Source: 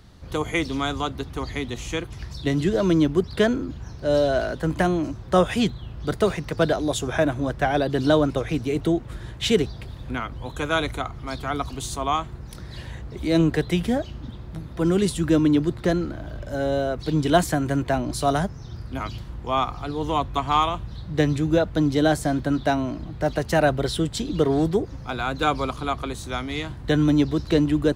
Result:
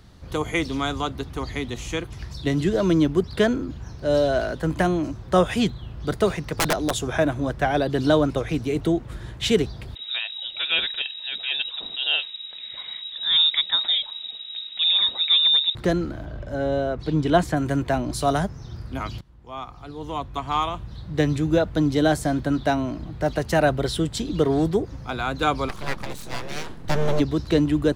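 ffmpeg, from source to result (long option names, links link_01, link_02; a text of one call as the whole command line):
ffmpeg -i in.wav -filter_complex "[0:a]asettb=1/sr,asplit=3[link_01][link_02][link_03];[link_01]atrim=end=6.474[link_04];[link_02]atrim=start=6.47:end=7.08,asetpts=PTS-STARTPTS,afade=type=in:duration=0.004:curve=qsin,afade=type=out:start_time=0.606:duration=0.004:curve=qsin,aeval=exprs='(mod(5.01*val(0)+1,2)-1)/5.01':channel_layout=same[link_05];[link_03]atrim=start=7.076[link_06];[link_04][link_05]acrossfade=duration=0.004:curve1=hsin:curve2=qsin[link_07];[link_07][link_06]acrossfade=duration=0.004:curve1=qsin:curve2=hsin,asettb=1/sr,asplit=3[link_08][link_09][link_10];[link_08]atrim=end=9.954[link_11];[link_09]atrim=start=9.95:end=15.75,asetpts=PTS-STARTPTS,afade=type=in:duration=0.004:curve=qsin,afade=type=out:start_time=5.796:duration=0.004:curve=qsin,lowpass=frequency=3300:width_type=q:width=0.5098,lowpass=frequency=3300:width_type=q:width=0.6013,lowpass=frequency=3300:width_type=q:width=0.9,lowpass=frequency=3300:width_type=q:width=2.563,afreqshift=-3900[link_12];[link_10]atrim=start=15.746[link_13];[link_11][link_12]acrossfade=duration=0.004:curve1=hsin:curve2=qsin[link_14];[link_14][link_13]acrossfade=duration=0.004:curve1=qsin:curve2=hsin,asettb=1/sr,asplit=3[link_15][link_16][link_17];[link_15]atrim=end=16.254[link_18];[link_16]atrim=start=16.25:end=17.57,asetpts=PTS-STARTPTS,afade=type=in:duration=0.004:curve=qsin,afade=type=out:start_time=1.316:duration=0.004:curve=qsin,lowpass=frequency=2900:poles=1[link_19];[link_17]atrim=start=17.566[link_20];[link_18][link_19]acrossfade=duration=0.004:curve1=hsin:curve2=qsin[link_21];[link_21][link_20]acrossfade=duration=0.004:curve1=qsin:curve2=hsin,asplit=3[link_22][link_23][link_24];[link_22]afade=type=out:start_time=25.68:duration=0.02[link_25];[link_23]aeval=exprs='abs(val(0))':channel_layout=same,afade=type=in:start_time=25.68:duration=0.02,afade=type=out:start_time=27.19:duration=0.02[link_26];[link_24]afade=type=in:start_time=27.19:duration=0.02[link_27];[link_25][link_26][link_27]amix=inputs=3:normalize=0,asplit=2[link_28][link_29];[link_28]atrim=end=19.21,asetpts=PTS-STARTPTS,afade=type=out:start_time=19.206:duration=0.004:curve=hsin:silence=0.1[link_30];[link_29]atrim=start=19.21,asetpts=PTS-STARTPTS,afade=type=in:duration=2.17:silence=0.1[link_31];[link_30][link_31]concat=n=2:v=0:a=1" out.wav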